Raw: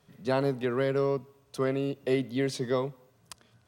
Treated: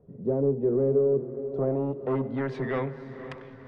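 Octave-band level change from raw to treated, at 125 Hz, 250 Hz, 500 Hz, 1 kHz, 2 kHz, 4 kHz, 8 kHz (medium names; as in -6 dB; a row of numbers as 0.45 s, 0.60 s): +2.5 dB, +2.0 dB, +3.0 dB, -2.0 dB, -3.0 dB, under -10 dB, under -20 dB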